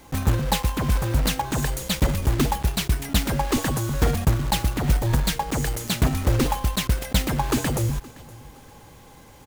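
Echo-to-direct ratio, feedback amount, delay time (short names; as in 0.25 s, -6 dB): -21.5 dB, 32%, 0.519 s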